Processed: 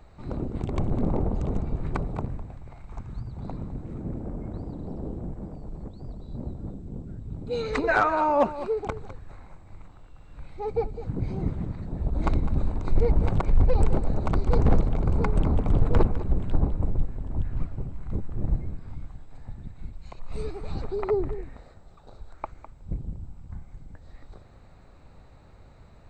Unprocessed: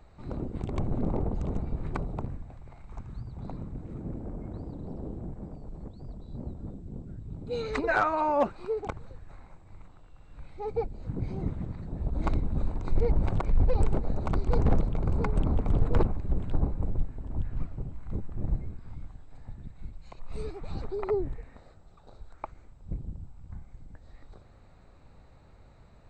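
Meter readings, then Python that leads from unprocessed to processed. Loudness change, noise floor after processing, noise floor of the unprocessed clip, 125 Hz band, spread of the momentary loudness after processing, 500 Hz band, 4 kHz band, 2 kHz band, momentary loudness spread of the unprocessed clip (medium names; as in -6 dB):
+3.5 dB, -51 dBFS, -54 dBFS, +3.5 dB, 20 LU, +3.5 dB, +3.5 dB, +3.5 dB, 19 LU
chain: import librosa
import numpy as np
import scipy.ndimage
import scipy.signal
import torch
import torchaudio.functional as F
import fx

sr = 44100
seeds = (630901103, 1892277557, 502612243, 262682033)

y = x + 10.0 ** (-13.5 / 20.0) * np.pad(x, (int(205 * sr / 1000.0), 0))[:len(x)]
y = y * 10.0 ** (3.5 / 20.0)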